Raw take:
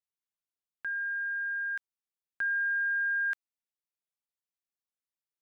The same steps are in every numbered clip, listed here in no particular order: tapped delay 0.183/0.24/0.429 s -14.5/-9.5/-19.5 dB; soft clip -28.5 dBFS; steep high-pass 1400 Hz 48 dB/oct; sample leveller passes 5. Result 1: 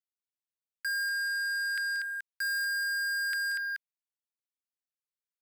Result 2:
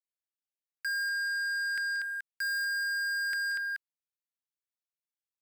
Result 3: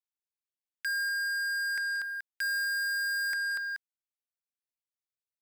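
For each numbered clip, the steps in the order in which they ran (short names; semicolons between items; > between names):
tapped delay > sample leveller > soft clip > steep high-pass; tapped delay > sample leveller > steep high-pass > soft clip; steep high-pass > soft clip > tapped delay > sample leveller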